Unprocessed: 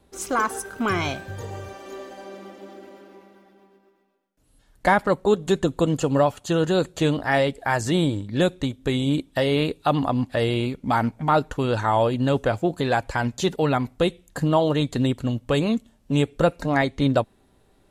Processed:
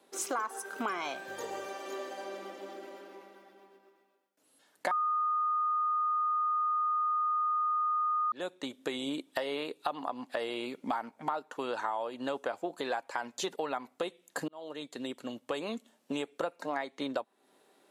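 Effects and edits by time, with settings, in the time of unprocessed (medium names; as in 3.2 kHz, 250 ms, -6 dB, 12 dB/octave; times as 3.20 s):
4.91–8.32 s: bleep 1.23 kHz -9 dBFS
14.48–16.13 s: fade in linear
whole clip: Bessel high-pass 380 Hz, order 4; dynamic bell 970 Hz, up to +6 dB, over -36 dBFS, Q 1.1; compression 6:1, threshold -32 dBFS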